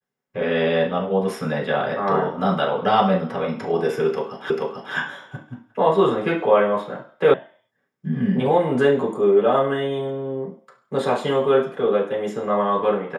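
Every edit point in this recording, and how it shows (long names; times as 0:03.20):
0:04.50: the same again, the last 0.44 s
0:07.34: cut off before it has died away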